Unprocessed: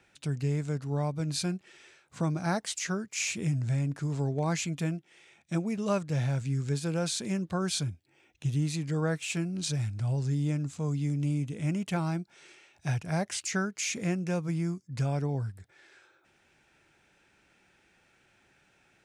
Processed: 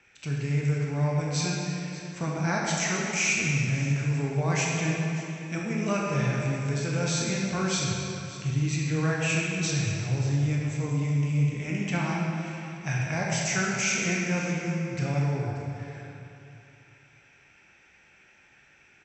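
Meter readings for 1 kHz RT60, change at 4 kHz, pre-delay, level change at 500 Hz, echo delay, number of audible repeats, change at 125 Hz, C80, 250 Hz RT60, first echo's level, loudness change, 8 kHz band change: 2.8 s, +4.0 dB, 16 ms, +3.0 dB, 0.583 s, 1, +3.5 dB, 0.0 dB, 2.8 s, -16.0 dB, +3.5 dB, +5.5 dB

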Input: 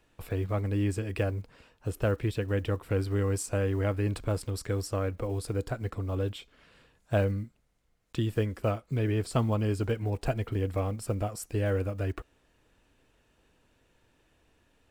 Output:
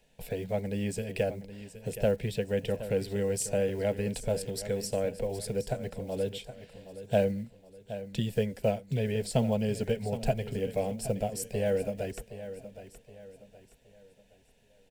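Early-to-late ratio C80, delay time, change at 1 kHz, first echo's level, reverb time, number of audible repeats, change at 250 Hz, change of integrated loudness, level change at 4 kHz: none, 0.77 s, -1.5 dB, -13.0 dB, none, 3, -0.5 dB, -1.0 dB, +2.5 dB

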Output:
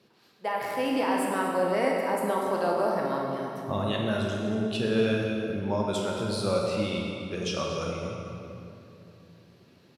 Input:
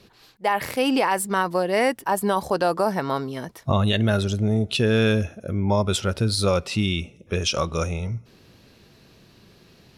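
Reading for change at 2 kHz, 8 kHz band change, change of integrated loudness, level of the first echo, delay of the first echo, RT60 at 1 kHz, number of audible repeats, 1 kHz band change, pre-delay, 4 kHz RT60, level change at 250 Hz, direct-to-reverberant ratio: -6.5 dB, -9.5 dB, -5.5 dB, -12.5 dB, 0.239 s, 2.6 s, 1, -5.0 dB, 19 ms, 1.9 s, -4.5 dB, -2.0 dB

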